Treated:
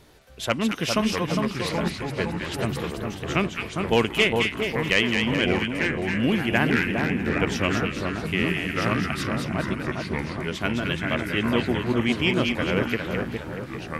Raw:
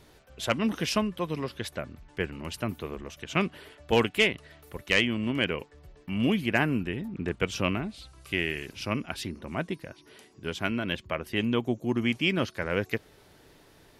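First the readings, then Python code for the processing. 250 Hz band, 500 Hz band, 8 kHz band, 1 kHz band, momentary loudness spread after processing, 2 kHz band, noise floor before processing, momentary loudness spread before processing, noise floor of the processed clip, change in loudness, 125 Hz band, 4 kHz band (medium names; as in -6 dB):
+5.5 dB, +5.0 dB, +5.0 dB, +6.0 dB, 8 LU, +6.0 dB, -58 dBFS, 14 LU, -36 dBFS, +5.0 dB, +6.5 dB, +4.5 dB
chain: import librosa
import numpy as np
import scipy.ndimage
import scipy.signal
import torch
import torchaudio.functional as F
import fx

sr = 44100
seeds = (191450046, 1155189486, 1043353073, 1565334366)

y = fx.echo_split(x, sr, split_hz=1400.0, low_ms=406, high_ms=213, feedback_pct=52, wet_db=-4)
y = fx.echo_pitch(y, sr, ms=526, semitones=-4, count=2, db_per_echo=-6.0)
y = y * 10.0 ** (2.5 / 20.0)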